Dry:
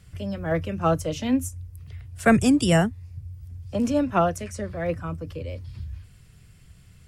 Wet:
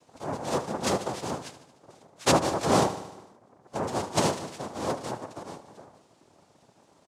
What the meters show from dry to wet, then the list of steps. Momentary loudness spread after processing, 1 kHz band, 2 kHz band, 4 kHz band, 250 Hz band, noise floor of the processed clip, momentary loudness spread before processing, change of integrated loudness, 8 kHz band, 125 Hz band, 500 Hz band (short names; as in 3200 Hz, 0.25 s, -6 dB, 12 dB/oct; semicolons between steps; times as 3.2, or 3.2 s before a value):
17 LU, 0.0 dB, -6.5 dB, +2.0 dB, -9.0 dB, -62 dBFS, 21 LU, -4.5 dB, +2.5 dB, -8.0 dB, -3.0 dB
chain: comb 5.6 ms, depth 77%; noise vocoder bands 2; on a send: feedback echo 75 ms, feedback 60%, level -13 dB; on the sum: gain -7 dB